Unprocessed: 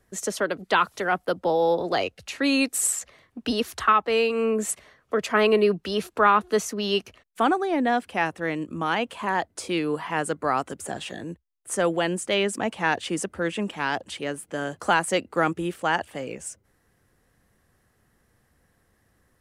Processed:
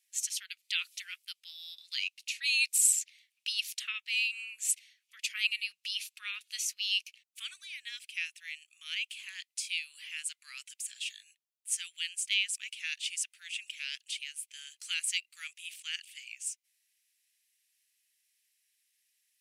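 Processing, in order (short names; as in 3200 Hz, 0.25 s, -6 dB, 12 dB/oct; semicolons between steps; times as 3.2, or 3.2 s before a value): elliptic high-pass 2400 Hz, stop band 70 dB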